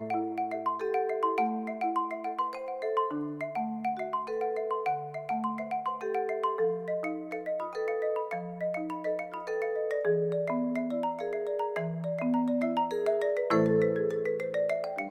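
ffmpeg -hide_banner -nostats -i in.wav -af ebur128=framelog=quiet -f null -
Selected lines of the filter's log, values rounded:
Integrated loudness:
  I:         -31.1 LUFS
  Threshold: -41.1 LUFS
Loudness range:
  LRA:         3.9 LU
  Threshold: -51.5 LUFS
  LRA low:   -32.8 LUFS
  LRA high:  -29.0 LUFS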